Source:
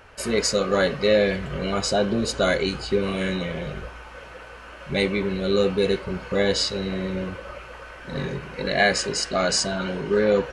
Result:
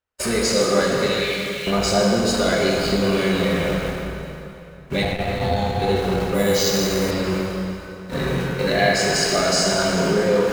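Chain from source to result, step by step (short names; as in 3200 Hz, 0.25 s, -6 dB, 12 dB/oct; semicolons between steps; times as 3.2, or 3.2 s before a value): zero-crossing step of -33.5 dBFS; gate -30 dBFS, range -55 dB; 1.06–1.67 steep high-pass 2100 Hz; compressor 3:1, threshold -24 dBFS, peak gain reduction 8 dB; 5.02–5.82 ring modulator 310 Hz; plate-style reverb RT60 2.9 s, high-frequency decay 0.8×, DRR -3.5 dB; 6.34–7.11 careless resampling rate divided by 4×, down none, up hold; core saturation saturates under 320 Hz; gain +3 dB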